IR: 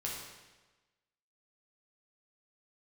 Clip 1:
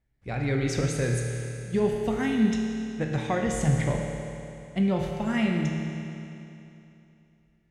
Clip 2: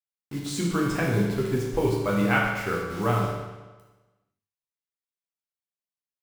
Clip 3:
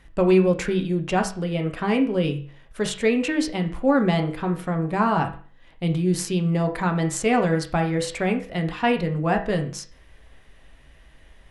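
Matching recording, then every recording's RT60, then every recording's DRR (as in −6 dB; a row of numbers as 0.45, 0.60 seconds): 2; 2.9, 1.2, 0.45 seconds; 0.0, −4.0, 4.0 decibels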